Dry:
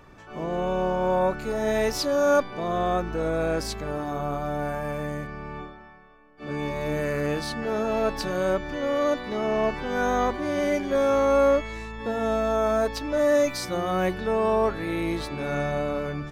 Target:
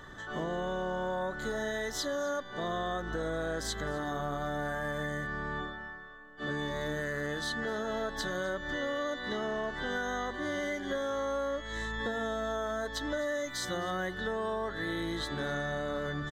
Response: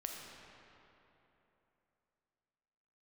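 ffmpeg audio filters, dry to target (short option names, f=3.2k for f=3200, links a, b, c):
-af "superequalizer=10b=1.41:11b=2.82:12b=0.282:13b=2.82:15b=2,acompressor=threshold=-31dB:ratio=10,aecho=1:1:256:0.0841"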